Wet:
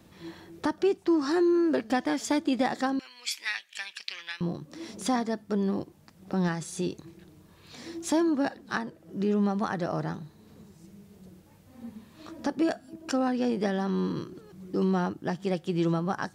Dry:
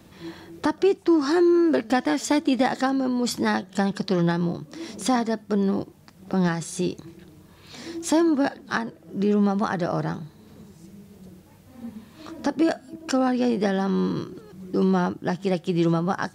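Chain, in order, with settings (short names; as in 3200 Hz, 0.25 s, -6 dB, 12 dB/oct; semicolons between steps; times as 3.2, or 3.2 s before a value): 2.99–4.41 resonant high-pass 2400 Hz, resonance Q 5; gain -5 dB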